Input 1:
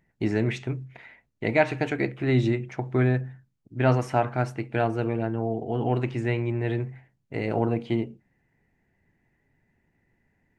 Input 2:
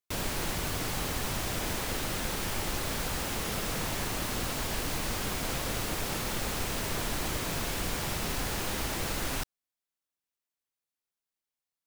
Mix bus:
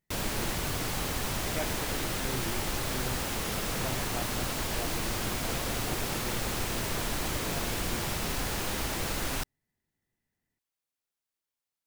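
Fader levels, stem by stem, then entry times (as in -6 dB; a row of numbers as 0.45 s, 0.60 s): -17.0 dB, +0.5 dB; 0.00 s, 0.00 s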